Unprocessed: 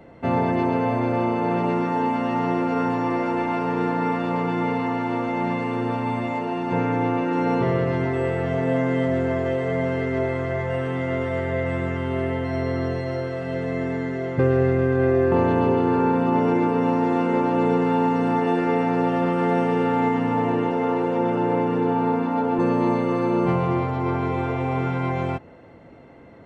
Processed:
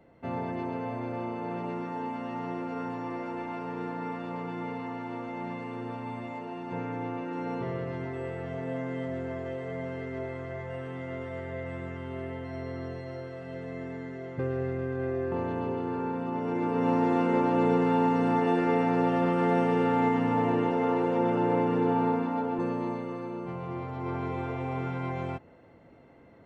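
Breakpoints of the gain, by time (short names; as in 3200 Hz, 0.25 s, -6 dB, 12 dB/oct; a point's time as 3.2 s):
16.41 s -12 dB
16.92 s -4 dB
22.01 s -4 dB
23.46 s -16.5 dB
24.18 s -8.5 dB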